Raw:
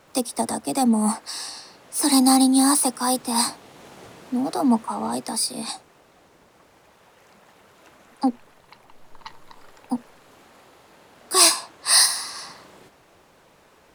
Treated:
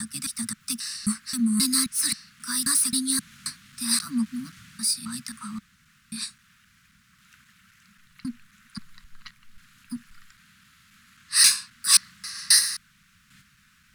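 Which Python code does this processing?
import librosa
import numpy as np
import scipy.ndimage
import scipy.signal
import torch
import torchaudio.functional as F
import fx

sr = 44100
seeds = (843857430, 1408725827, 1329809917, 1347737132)

y = fx.block_reorder(x, sr, ms=266.0, group=3)
y = scipy.signal.sosfilt(scipy.signal.ellip(3, 1.0, 40, [210.0, 1400.0], 'bandstop', fs=sr, output='sos'), y)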